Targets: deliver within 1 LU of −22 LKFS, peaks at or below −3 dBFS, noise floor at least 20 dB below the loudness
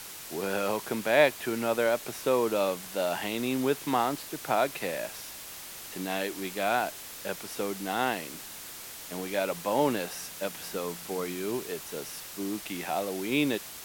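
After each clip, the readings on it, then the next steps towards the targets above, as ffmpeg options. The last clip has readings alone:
background noise floor −43 dBFS; target noise floor −51 dBFS; integrated loudness −30.5 LKFS; sample peak −8.5 dBFS; target loudness −22.0 LKFS
→ -af "afftdn=noise_reduction=8:noise_floor=-43"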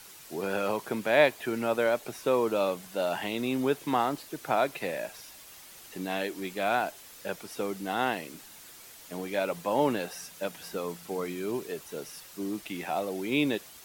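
background noise floor −50 dBFS; target noise floor −51 dBFS
→ -af "afftdn=noise_reduction=6:noise_floor=-50"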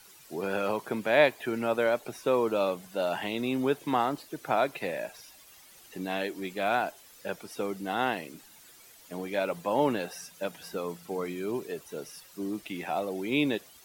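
background noise floor −54 dBFS; integrated loudness −30.5 LKFS; sample peak −8.5 dBFS; target loudness −22.0 LKFS
→ -af "volume=8.5dB,alimiter=limit=-3dB:level=0:latency=1"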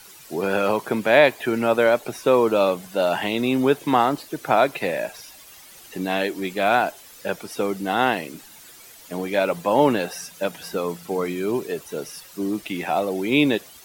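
integrated loudness −22.0 LKFS; sample peak −3.0 dBFS; background noise floor −46 dBFS

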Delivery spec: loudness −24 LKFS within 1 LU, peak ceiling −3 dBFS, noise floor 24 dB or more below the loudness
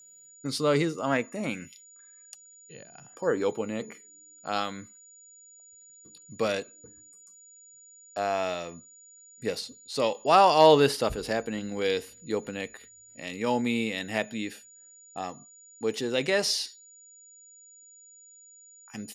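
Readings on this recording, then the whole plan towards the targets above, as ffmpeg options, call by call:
interfering tone 6,900 Hz; level of the tone −51 dBFS; integrated loudness −27.5 LKFS; sample peak −7.0 dBFS; target loudness −24.0 LKFS
→ -af "bandreject=frequency=6900:width=30"
-af "volume=3.5dB"

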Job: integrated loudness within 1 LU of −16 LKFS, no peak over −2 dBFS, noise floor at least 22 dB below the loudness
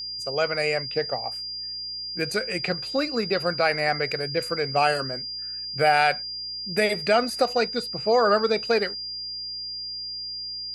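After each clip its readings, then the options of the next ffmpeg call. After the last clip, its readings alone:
mains hum 60 Hz; hum harmonics up to 360 Hz; level of the hum −54 dBFS; interfering tone 4,800 Hz; level of the tone −31 dBFS; integrated loudness −25.0 LKFS; sample peak −7.5 dBFS; target loudness −16.0 LKFS
→ -af "bandreject=frequency=60:width_type=h:width=4,bandreject=frequency=120:width_type=h:width=4,bandreject=frequency=180:width_type=h:width=4,bandreject=frequency=240:width_type=h:width=4,bandreject=frequency=300:width_type=h:width=4,bandreject=frequency=360:width_type=h:width=4"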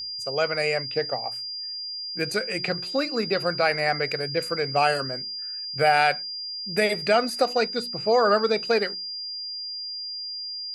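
mains hum none found; interfering tone 4,800 Hz; level of the tone −31 dBFS
→ -af "bandreject=frequency=4800:width=30"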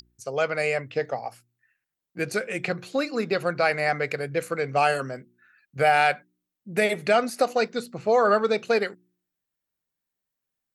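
interfering tone none found; integrated loudness −25.0 LKFS; sample peak −8.0 dBFS; target loudness −16.0 LKFS
→ -af "volume=9dB,alimiter=limit=-2dB:level=0:latency=1"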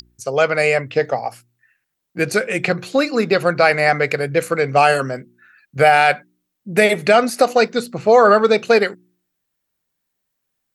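integrated loudness −16.5 LKFS; sample peak −2.0 dBFS; background noise floor −76 dBFS

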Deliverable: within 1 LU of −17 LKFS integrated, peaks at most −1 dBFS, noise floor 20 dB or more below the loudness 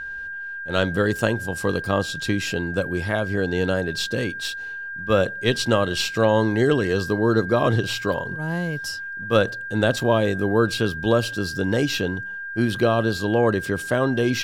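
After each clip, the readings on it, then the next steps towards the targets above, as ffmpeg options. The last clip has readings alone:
interfering tone 1,600 Hz; level of the tone −30 dBFS; integrated loudness −22.5 LKFS; sample peak −5.5 dBFS; target loudness −17.0 LKFS
→ -af "bandreject=frequency=1600:width=30"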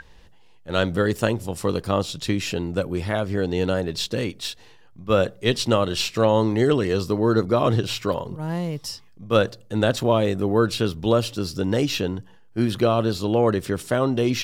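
interfering tone none found; integrated loudness −23.0 LKFS; sample peak −5.5 dBFS; target loudness −17.0 LKFS
→ -af "volume=6dB,alimiter=limit=-1dB:level=0:latency=1"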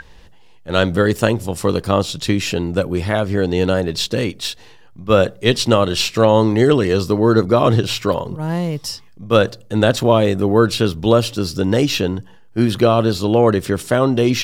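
integrated loudness −17.0 LKFS; sample peak −1.0 dBFS; background noise floor −43 dBFS

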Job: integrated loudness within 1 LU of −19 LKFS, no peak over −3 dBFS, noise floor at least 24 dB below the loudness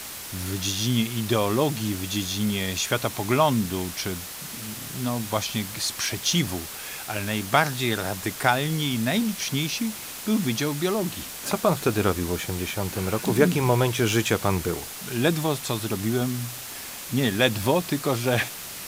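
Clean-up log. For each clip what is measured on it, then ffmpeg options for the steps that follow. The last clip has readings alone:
background noise floor −37 dBFS; target noise floor −49 dBFS; integrated loudness −25.0 LKFS; sample peak −4.5 dBFS; target loudness −19.0 LKFS
→ -af "afftdn=noise_reduction=12:noise_floor=-37"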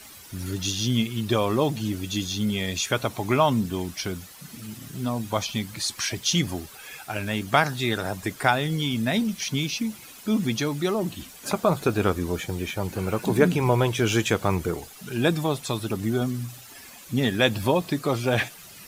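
background noise floor −46 dBFS; target noise floor −50 dBFS
→ -af "afftdn=noise_reduction=6:noise_floor=-46"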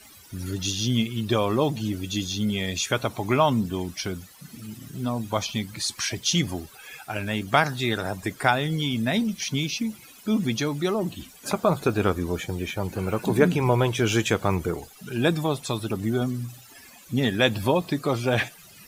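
background noise floor −49 dBFS; target noise floor −50 dBFS
→ -af "afftdn=noise_reduction=6:noise_floor=-49"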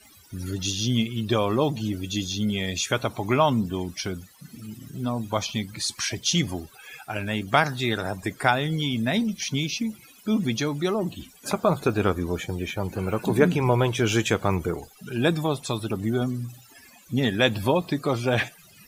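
background noise floor −53 dBFS; integrated loudness −25.5 LKFS; sample peak −4.5 dBFS; target loudness −19.0 LKFS
→ -af "volume=6.5dB,alimiter=limit=-3dB:level=0:latency=1"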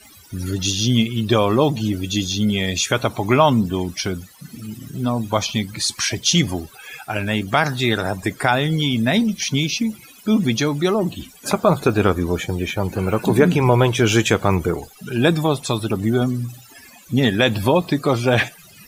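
integrated loudness −19.5 LKFS; sample peak −3.0 dBFS; background noise floor −46 dBFS

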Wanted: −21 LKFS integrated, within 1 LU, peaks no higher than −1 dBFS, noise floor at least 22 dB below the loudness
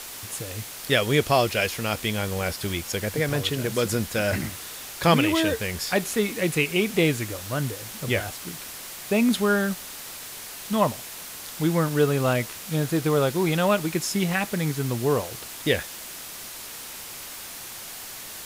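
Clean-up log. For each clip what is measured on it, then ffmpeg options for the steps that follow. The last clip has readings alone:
background noise floor −39 dBFS; target noise floor −48 dBFS; integrated loudness −25.5 LKFS; sample peak −6.5 dBFS; target loudness −21.0 LKFS
→ -af "afftdn=noise_reduction=9:noise_floor=-39"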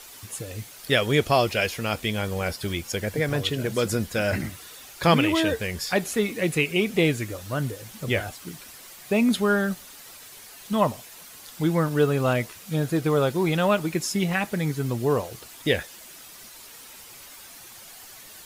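background noise floor −45 dBFS; target noise floor −47 dBFS
→ -af "afftdn=noise_reduction=6:noise_floor=-45"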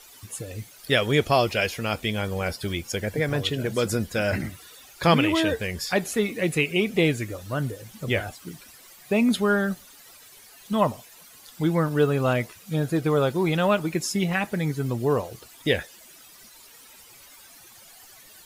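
background noise floor −50 dBFS; integrated loudness −25.0 LKFS; sample peak −6.5 dBFS; target loudness −21.0 LKFS
→ -af "volume=4dB"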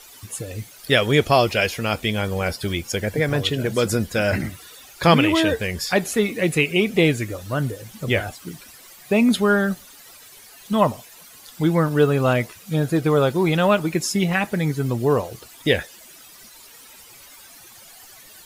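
integrated loudness −21.0 LKFS; sample peak −2.5 dBFS; background noise floor −46 dBFS

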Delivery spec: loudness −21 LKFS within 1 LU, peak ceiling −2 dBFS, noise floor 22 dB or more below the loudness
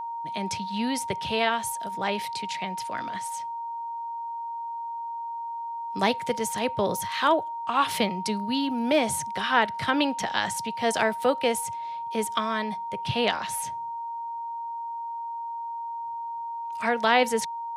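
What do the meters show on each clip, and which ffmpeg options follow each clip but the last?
interfering tone 930 Hz; level of the tone −31 dBFS; integrated loudness −28.0 LKFS; sample peak −8.5 dBFS; target loudness −21.0 LKFS
→ -af "bandreject=frequency=930:width=30"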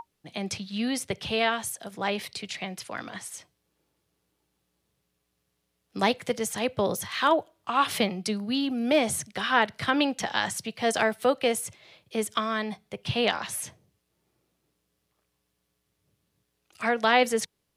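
interfering tone none found; integrated loudness −27.5 LKFS; sample peak −9.5 dBFS; target loudness −21.0 LKFS
→ -af "volume=6.5dB"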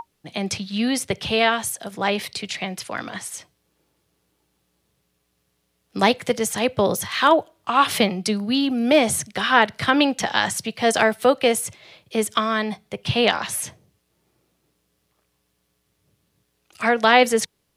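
integrated loudness −21.0 LKFS; sample peak −3.0 dBFS; background noise floor −71 dBFS

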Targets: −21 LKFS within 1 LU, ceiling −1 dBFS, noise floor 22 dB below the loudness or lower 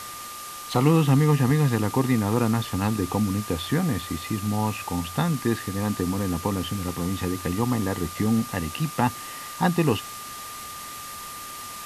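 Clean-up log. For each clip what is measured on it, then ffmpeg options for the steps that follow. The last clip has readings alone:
interfering tone 1,200 Hz; level of the tone −38 dBFS; background noise floor −38 dBFS; target noise floor −48 dBFS; integrated loudness −25.5 LKFS; sample peak −6.0 dBFS; target loudness −21.0 LKFS
→ -af "bandreject=frequency=1200:width=30"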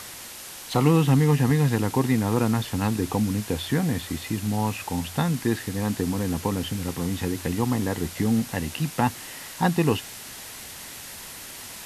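interfering tone none found; background noise floor −40 dBFS; target noise floor −47 dBFS
→ -af "afftdn=noise_reduction=7:noise_floor=-40"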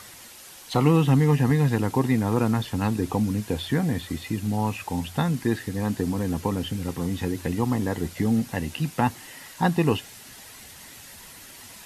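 background noise floor −45 dBFS; target noise floor −47 dBFS
→ -af "afftdn=noise_reduction=6:noise_floor=-45"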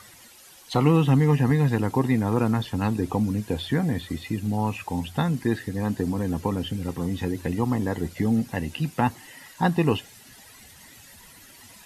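background noise floor −50 dBFS; integrated loudness −25.0 LKFS; sample peak −6.5 dBFS; target loudness −21.0 LKFS
→ -af "volume=4dB"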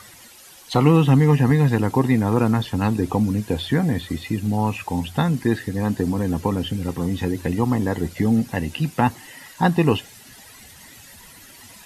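integrated loudness −21.0 LKFS; sample peak −2.5 dBFS; background noise floor −46 dBFS

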